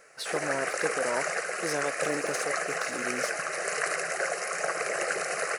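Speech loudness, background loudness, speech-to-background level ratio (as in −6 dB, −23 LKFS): −35.5 LKFS, −30.5 LKFS, −5.0 dB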